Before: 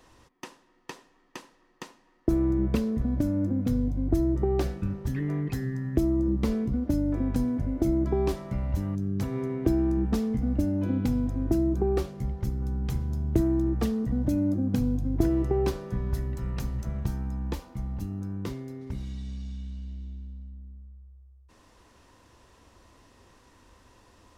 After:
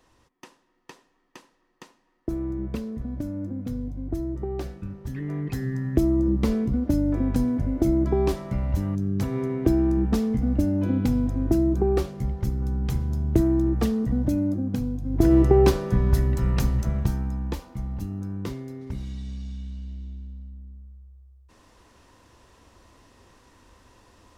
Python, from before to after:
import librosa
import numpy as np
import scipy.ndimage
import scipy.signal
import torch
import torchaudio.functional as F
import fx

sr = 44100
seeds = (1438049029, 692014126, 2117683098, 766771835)

y = fx.gain(x, sr, db=fx.line((4.94, -5.0), (5.76, 3.5), (14.13, 3.5), (15.01, -3.0), (15.34, 9.0), (16.65, 9.0), (17.51, 2.0)))